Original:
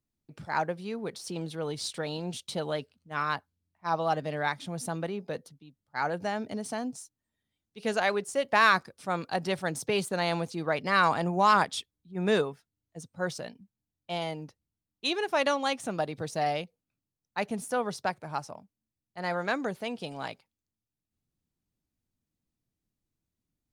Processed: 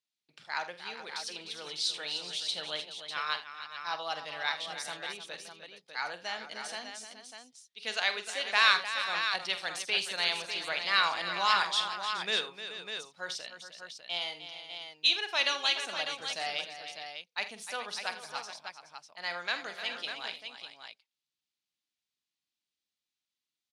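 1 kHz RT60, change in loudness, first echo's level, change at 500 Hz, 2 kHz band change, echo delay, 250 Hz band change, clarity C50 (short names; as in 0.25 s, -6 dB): none, -1.5 dB, -11.5 dB, -11.5 dB, +0.5 dB, 46 ms, -18.5 dB, none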